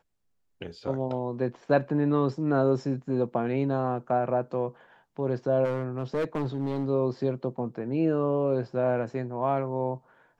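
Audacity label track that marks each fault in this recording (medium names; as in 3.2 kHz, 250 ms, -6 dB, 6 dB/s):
5.640000	6.870000	clipped -24 dBFS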